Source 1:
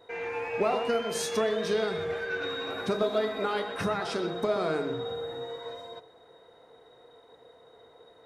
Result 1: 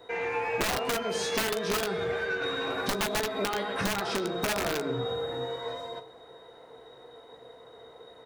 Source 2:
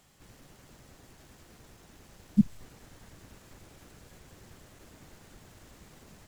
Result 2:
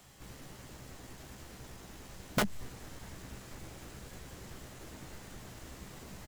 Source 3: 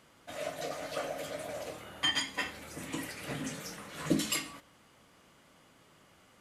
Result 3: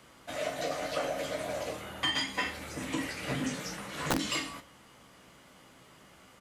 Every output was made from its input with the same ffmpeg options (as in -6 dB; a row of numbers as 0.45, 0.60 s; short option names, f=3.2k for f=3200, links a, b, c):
-filter_complex "[0:a]aecho=1:1:16|40:0.282|0.188,acrossover=split=260|1400[a][b][c];[c]asoftclip=type=tanh:threshold=-28.5dB[d];[a][b][d]amix=inputs=3:normalize=0,acrossover=split=7400[e][f];[f]acompressor=threshold=-57dB:ratio=4:attack=1:release=60[g];[e][g]amix=inputs=2:normalize=0,aeval=exprs='(mod(11.2*val(0)+1,2)-1)/11.2':c=same,acompressor=threshold=-31dB:ratio=6,asplit=2[h][i];[i]adelay=15,volume=-13dB[j];[h][j]amix=inputs=2:normalize=0,volume=4.5dB"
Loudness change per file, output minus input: 0.0, -15.0, +2.0 LU